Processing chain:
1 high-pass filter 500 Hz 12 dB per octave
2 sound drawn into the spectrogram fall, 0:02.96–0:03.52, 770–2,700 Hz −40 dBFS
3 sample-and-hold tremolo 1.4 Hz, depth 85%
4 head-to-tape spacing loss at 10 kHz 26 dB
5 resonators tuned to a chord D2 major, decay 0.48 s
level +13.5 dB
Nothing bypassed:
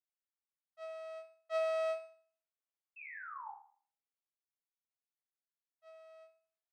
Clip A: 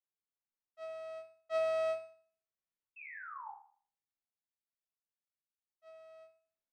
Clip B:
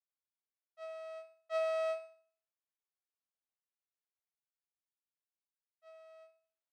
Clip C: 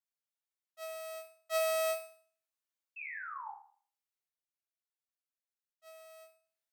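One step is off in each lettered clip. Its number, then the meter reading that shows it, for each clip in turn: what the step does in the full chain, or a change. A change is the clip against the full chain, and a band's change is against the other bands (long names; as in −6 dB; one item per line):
1, change in integrated loudness +1.5 LU
2, change in integrated loudness +2.0 LU
4, 4 kHz band +7.0 dB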